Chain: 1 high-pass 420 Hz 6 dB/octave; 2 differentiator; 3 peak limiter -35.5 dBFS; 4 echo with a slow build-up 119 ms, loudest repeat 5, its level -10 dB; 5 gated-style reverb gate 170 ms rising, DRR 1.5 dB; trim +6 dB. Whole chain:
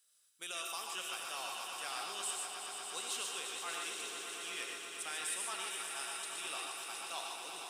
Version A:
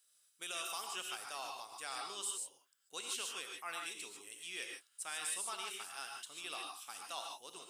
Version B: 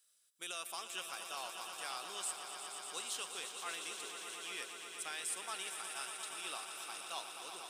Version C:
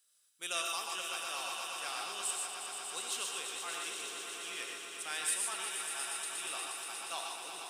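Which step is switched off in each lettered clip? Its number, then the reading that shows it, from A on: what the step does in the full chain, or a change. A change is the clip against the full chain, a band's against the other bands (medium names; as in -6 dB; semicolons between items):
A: 4, echo-to-direct 3.5 dB to -1.5 dB; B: 5, echo-to-direct 3.5 dB to -0.5 dB; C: 3, crest factor change +3.5 dB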